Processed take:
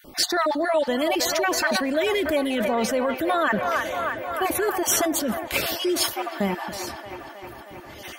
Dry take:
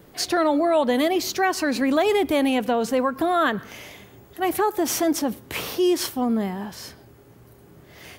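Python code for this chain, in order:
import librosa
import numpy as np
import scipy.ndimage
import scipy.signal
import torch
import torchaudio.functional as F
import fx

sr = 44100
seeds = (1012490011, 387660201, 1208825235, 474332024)

p1 = fx.spec_dropout(x, sr, seeds[0], share_pct=28)
p2 = p1 + 0.41 * np.pad(p1, (int(3.4 * sr / 1000.0), 0))[:len(p1)]
p3 = fx.echo_wet_bandpass(p2, sr, ms=314, feedback_pct=74, hz=1200.0, wet_db=-8.0)
p4 = fx.over_compress(p3, sr, threshold_db=-25.0, ratio=-0.5)
p5 = p3 + (p4 * librosa.db_to_amplitude(0.5))
p6 = fx.dynamic_eq(p5, sr, hz=280.0, q=2.6, threshold_db=-33.0, ratio=4.0, max_db=-6)
y = p6 * librosa.db_to_amplitude(-3.5)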